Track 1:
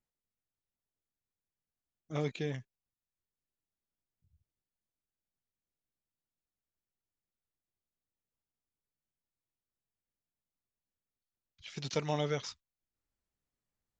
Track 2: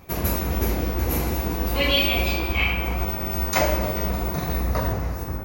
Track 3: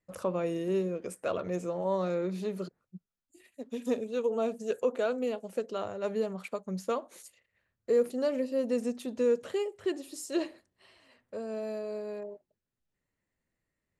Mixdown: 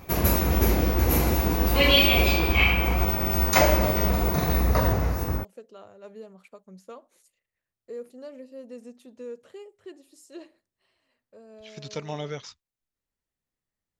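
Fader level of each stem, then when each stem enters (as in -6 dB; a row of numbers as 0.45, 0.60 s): -0.5, +2.0, -12.0 dB; 0.00, 0.00, 0.00 s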